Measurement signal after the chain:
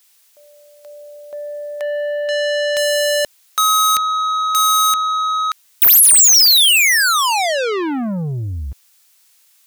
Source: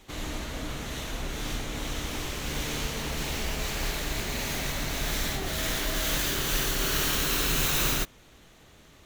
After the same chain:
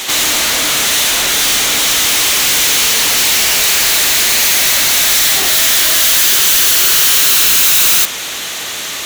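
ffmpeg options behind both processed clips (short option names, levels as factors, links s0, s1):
-filter_complex "[0:a]asplit=2[s0][s1];[s1]highpass=f=720:p=1,volume=79.4,asoftclip=type=tanh:threshold=0.251[s2];[s0][s2]amix=inputs=2:normalize=0,lowpass=f=3700:p=1,volume=0.501,crystalizer=i=6.5:c=0,volume=0.794"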